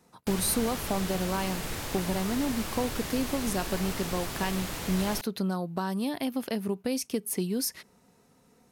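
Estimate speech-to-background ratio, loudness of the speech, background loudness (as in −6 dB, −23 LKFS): 3.5 dB, −31.5 LKFS, −35.0 LKFS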